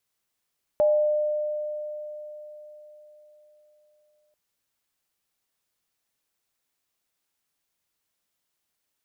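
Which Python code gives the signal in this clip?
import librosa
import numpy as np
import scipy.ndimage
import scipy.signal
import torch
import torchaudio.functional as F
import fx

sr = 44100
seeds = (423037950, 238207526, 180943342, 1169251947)

y = fx.additive_free(sr, length_s=3.54, hz=602.0, level_db=-16.0, upper_db=(-16.5,), decay_s=4.23, upper_decays_s=(0.79,), upper_hz=(826.0,))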